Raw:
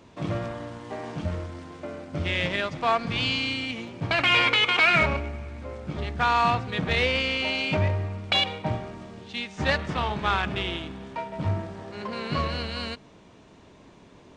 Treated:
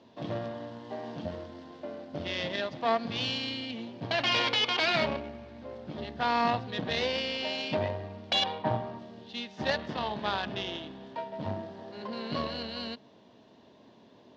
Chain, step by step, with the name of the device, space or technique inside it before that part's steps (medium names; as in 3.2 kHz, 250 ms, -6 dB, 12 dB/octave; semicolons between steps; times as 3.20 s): 8.42–8.99 s: graphic EQ 125/1000/8000 Hz +5/+9/-6 dB; guitar amplifier (valve stage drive 15 dB, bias 0.8; tone controls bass -10 dB, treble +6 dB; cabinet simulation 79–4500 Hz, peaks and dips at 120 Hz +7 dB, 230 Hz +9 dB, 630 Hz +3 dB, 1.3 kHz -8 dB, 2.3 kHz -9 dB); trim +1 dB